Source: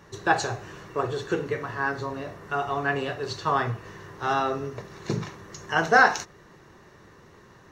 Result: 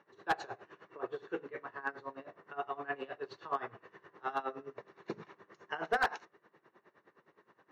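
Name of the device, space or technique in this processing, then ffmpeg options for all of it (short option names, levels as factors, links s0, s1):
helicopter radio: -af "highpass=300,lowpass=2600,aeval=exprs='val(0)*pow(10,-19*(0.5-0.5*cos(2*PI*9.6*n/s))/20)':c=same,asoftclip=type=hard:threshold=0.141,volume=0.473"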